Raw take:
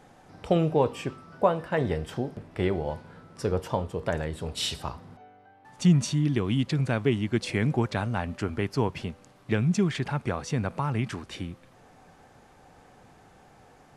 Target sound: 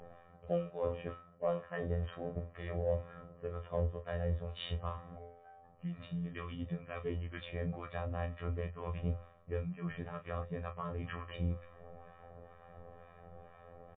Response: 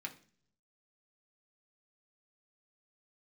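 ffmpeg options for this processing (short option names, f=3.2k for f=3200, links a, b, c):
-filter_complex "[0:a]aecho=1:1:1.7:0.97,bandreject=f=49.38:t=h:w=4,bandreject=f=98.76:t=h:w=4,areverse,acompressor=threshold=-33dB:ratio=6,areverse,acrossover=split=890[a][b];[a]aeval=exprs='val(0)*(1-0.7/2+0.7/2*cos(2*PI*2.1*n/s))':c=same[c];[b]aeval=exprs='val(0)*(1-0.7/2-0.7/2*cos(2*PI*2.1*n/s))':c=same[d];[c][d]amix=inputs=2:normalize=0,adynamicsmooth=sensitivity=6.5:basefreq=1.6k,afftfilt=real='hypot(re,im)*cos(PI*b)':imag='0':win_size=2048:overlap=0.75,asplit=2[e][f];[f]aecho=0:1:27|37:0.299|0.178[g];[e][g]amix=inputs=2:normalize=0,volume=5.5dB" -ar 8000 -c:a libmp3lame -b:a 24k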